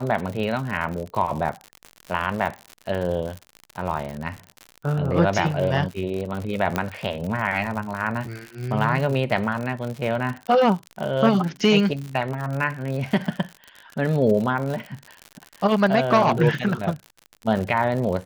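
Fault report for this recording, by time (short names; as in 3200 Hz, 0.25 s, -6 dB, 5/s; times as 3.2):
crackle 80/s -28 dBFS
6.76 pop -9 dBFS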